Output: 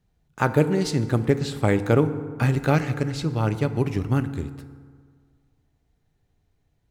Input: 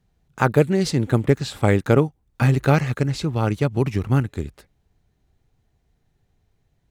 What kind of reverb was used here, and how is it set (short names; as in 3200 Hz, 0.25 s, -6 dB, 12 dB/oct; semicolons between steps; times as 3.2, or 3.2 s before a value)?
FDN reverb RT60 1.8 s, low-frequency decay 1×, high-frequency decay 0.5×, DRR 10.5 dB; gain -3 dB